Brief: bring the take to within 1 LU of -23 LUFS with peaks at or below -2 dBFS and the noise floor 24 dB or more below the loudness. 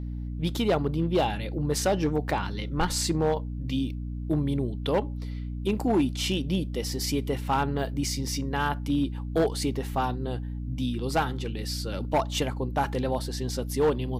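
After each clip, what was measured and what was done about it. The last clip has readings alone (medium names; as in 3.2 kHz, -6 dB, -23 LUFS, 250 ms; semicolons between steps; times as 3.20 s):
clipped samples 0.8%; clipping level -17.5 dBFS; hum 60 Hz; highest harmonic 300 Hz; hum level -31 dBFS; loudness -28.5 LUFS; peak level -17.5 dBFS; loudness target -23.0 LUFS
-> clip repair -17.5 dBFS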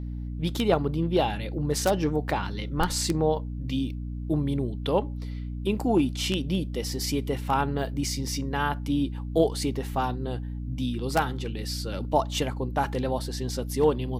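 clipped samples 0.0%; hum 60 Hz; highest harmonic 300 Hz; hum level -31 dBFS
-> de-hum 60 Hz, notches 5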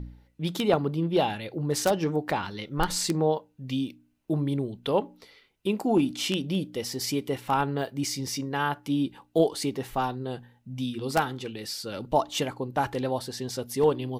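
hum not found; loudness -28.5 LUFS; peak level -8.0 dBFS; loudness target -23.0 LUFS
-> trim +5.5 dB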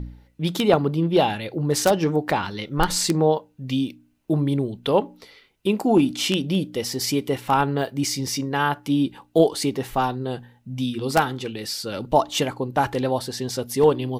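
loudness -23.0 LUFS; peak level -2.5 dBFS; noise floor -60 dBFS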